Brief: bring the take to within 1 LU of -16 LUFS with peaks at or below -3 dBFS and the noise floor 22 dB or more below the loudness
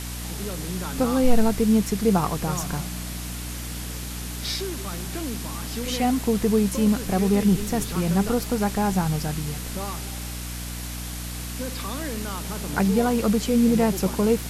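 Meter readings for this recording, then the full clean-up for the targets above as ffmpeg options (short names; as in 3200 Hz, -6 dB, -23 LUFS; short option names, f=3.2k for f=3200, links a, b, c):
hum 60 Hz; harmonics up to 300 Hz; hum level -32 dBFS; noise floor -33 dBFS; noise floor target -47 dBFS; loudness -25.0 LUFS; peak -7.0 dBFS; loudness target -16.0 LUFS
-> -af "bandreject=f=60:t=h:w=6,bandreject=f=120:t=h:w=6,bandreject=f=180:t=h:w=6,bandreject=f=240:t=h:w=6,bandreject=f=300:t=h:w=6"
-af "afftdn=nr=14:nf=-33"
-af "volume=9dB,alimiter=limit=-3dB:level=0:latency=1"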